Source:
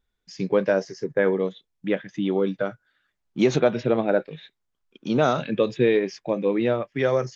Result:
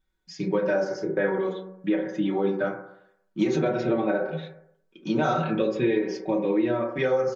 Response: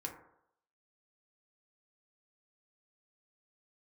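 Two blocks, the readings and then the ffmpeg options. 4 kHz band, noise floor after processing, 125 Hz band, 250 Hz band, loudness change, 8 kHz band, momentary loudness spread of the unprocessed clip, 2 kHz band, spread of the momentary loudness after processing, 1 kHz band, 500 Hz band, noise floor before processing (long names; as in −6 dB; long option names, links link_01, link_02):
−4.5 dB, −71 dBFS, −2.5 dB, −0.5 dB, −2.5 dB, can't be measured, 10 LU, −1.5 dB, 9 LU, −0.5 dB, −3.0 dB, −78 dBFS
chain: -filter_complex "[0:a]equalizer=frequency=290:width=3.7:gain=5.5,aecho=1:1:5.3:0.85[link_01];[1:a]atrim=start_sample=2205[link_02];[link_01][link_02]afir=irnorm=-1:irlink=0,acompressor=threshold=-20dB:ratio=4,bandreject=frequency=47.15:width_type=h:width=4,bandreject=frequency=94.3:width_type=h:width=4,bandreject=frequency=141.45:width_type=h:width=4,bandreject=frequency=188.6:width_type=h:width=4,bandreject=frequency=235.75:width_type=h:width=4,bandreject=frequency=282.9:width_type=h:width=4,bandreject=frequency=330.05:width_type=h:width=4,bandreject=frequency=377.2:width_type=h:width=4,bandreject=frequency=424.35:width_type=h:width=4,bandreject=frequency=471.5:width_type=h:width=4,bandreject=frequency=518.65:width_type=h:width=4,bandreject=frequency=565.8:width_type=h:width=4,bandreject=frequency=612.95:width_type=h:width=4,bandreject=frequency=660.1:width_type=h:width=4,bandreject=frequency=707.25:width_type=h:width=4"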